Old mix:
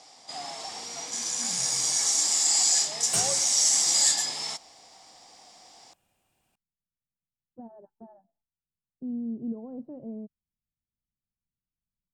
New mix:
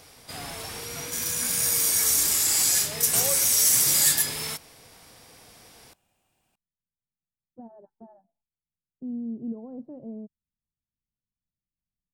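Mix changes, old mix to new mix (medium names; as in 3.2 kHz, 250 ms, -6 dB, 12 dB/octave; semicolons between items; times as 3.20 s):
first sound: remove cabinet simulation 300–7500 Hz, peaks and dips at 450 Hz -9 dB, 770 Hz +9 dB, 1.5 kHz -8 dB, 2.5 kHz -5 dB, 5 kHz +5 dB, 7.3 kHz +8 dB; reverb: on, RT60 0.35 s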